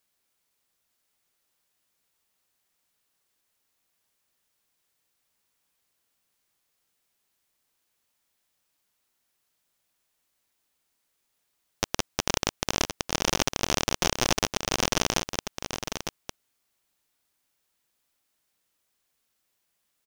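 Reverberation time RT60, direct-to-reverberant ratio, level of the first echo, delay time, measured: no reverb audible, no reverb audible, −8.0 dB, 905 ms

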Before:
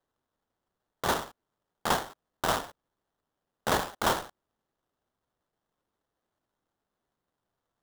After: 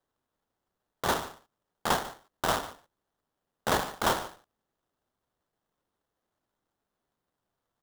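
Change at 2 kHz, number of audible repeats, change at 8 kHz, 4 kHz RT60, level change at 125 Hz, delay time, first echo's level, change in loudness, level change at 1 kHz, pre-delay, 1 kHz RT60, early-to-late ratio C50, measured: 0.0 dB, 1, 0.0 dB, no reverb audible, 0.0 dB, 146 ms, −17.0 dB, 0.0 dB, 0.0 dB, no reverb audible, no reverb audible, no reverb audible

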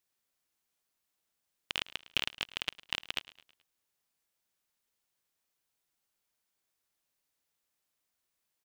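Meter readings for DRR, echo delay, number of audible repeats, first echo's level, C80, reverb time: no reverb audible, 107 ms, 3, −19.0 dB, no reverb audible, no reverb audible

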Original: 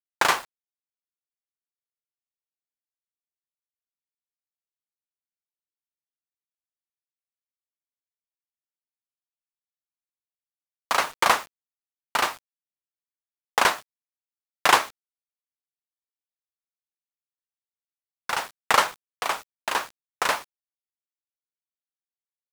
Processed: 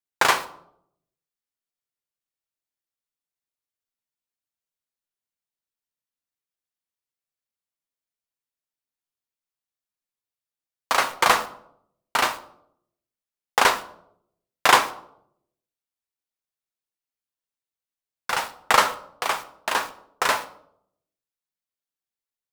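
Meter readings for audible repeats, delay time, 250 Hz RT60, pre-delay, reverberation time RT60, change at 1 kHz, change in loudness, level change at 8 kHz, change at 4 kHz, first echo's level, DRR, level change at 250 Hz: no echo audible, no echo audible, 0.85 s, 8 ms, 0.70 s, +2.0 dB, +2.0 dB, +2.0 dB, +2.0 dB, no echo audible, 8.0 dB, +2.5 dB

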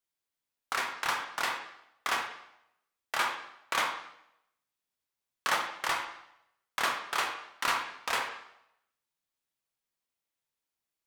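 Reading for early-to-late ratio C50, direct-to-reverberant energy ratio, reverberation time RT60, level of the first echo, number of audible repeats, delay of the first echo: 6.0 dB, 2.0 dB, 0.80 s, no echo audible, no echo audible, no echo audible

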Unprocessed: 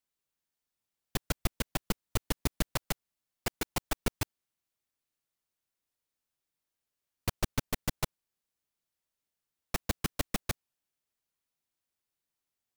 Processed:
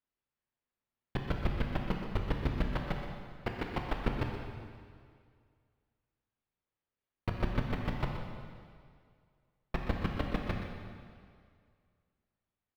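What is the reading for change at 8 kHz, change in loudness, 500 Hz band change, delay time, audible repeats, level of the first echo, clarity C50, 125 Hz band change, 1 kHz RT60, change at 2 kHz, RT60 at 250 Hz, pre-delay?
below −20 dB, −1.0 dB, +1.5 dB, 124 ms, 1, −10.5 dB, 2.5 dB, +3.0 dB, 2.1 s, −1.5 dB, 2.1 s, 5 ms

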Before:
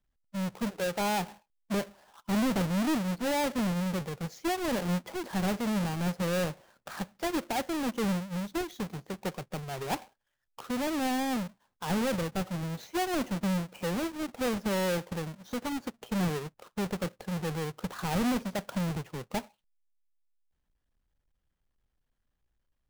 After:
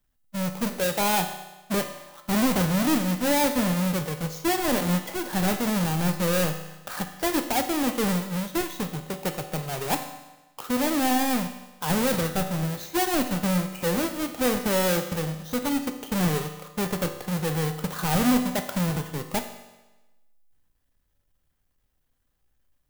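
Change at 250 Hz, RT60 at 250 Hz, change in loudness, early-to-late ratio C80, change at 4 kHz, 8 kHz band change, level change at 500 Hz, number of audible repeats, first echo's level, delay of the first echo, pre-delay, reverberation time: +5.5 dB, 1.1 s, +6.5 dB, 11.0 dB, +7.5 dB, +10.0 dB, +5.5 dB, no echo audible, no echo audible, no echo audible, 4 ms, 1.1 s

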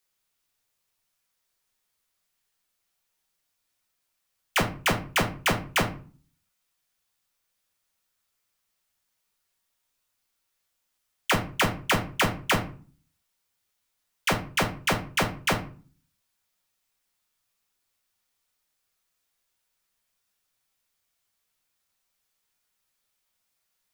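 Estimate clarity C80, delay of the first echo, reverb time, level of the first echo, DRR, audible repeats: 16.5 dB, no echo audible, 0.40 s, no echo audible, 2.0 dB, no echo audible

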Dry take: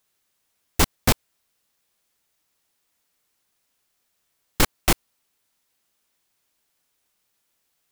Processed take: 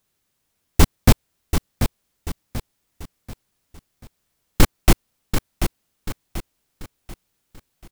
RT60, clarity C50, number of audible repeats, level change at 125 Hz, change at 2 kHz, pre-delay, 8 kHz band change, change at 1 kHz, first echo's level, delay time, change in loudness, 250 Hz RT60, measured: no reverb audible, no reverb audible, 4, +9.5 dB, 0.0 dB, no reverb audible, 0.0 dB, +1.0 dB, −8.0 dB, 737 ms, 0.0 dB, no reverb audible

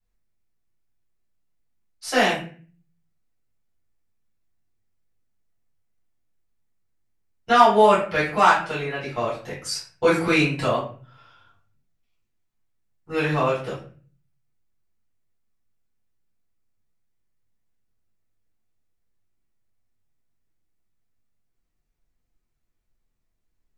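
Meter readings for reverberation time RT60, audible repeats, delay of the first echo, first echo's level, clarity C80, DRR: 0.45 s, no echo audible, no echo audible, no echo audible, 11.0 dB, −10.0 dB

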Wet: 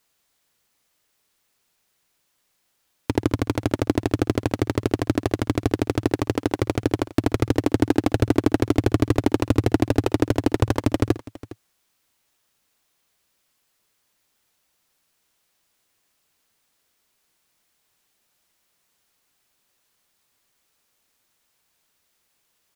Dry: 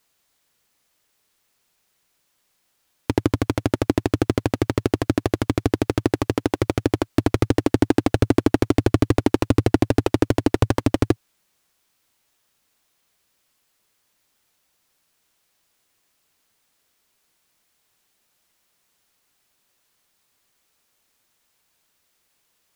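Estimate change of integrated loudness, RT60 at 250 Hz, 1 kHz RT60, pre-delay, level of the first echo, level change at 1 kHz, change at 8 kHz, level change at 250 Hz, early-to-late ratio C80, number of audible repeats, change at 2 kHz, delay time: −1.5 dB, no reverb audible, no reverb audible, no reverb audible, −18.0 dB, −1.5 dB, −1.5 dB, −1.5 dB, no reverb audible, 2, −1.5 dB, 55 ms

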